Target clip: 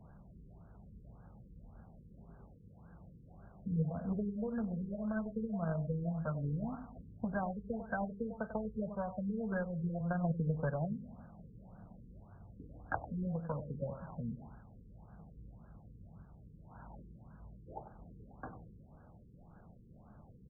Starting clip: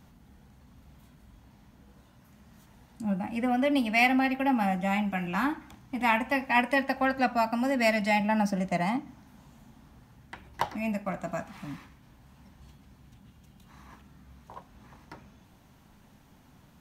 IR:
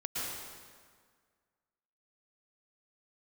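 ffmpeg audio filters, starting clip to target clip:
-filter_complex "[0:a]acrossover=split=150[s0][s1];[s1]acompressor=threshold=0.0141:ratio=12[s2];[s0][s2]amix=inputs=2:normalize=0,aexciter=amount=2.9:drive=7.6:freq=2300,asetrate=36162,aresample=44100,asplit=2[s3][s4];[s4]acrusher=bits=4:mix=0:aa=0.000001,volume=0.473[s5];[s3][s5]amix=inputs=2:normalize=0,aecho=1:1:97|194|291:0.282|0.0817|0.0237,afftfilt=real='re*lt(b*sr/1024,480*pow(1700/480,0.5+0.5*sin(2*PI*1.8*pts/sr)))':imag='im*lt(b*sr/1024,480*pow(1700/480,0.5+0.5*sin(2*PI*1.8*pts/sr)))':win_size=1024:overlap=0.75"

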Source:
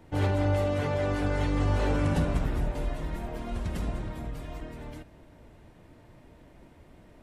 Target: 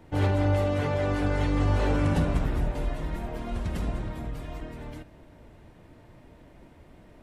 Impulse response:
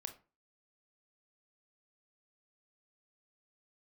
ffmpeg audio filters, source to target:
-filter_complex "[0:a]asplit=2[s0][s1];[1:a]atrim=start_sample=2205,lowpass=5800[s2];[s1][s2]afir=irnorm=-1:irlink=0,volume=0.335[s3];[s0][s3]amix=inputs=2:normalize=0"

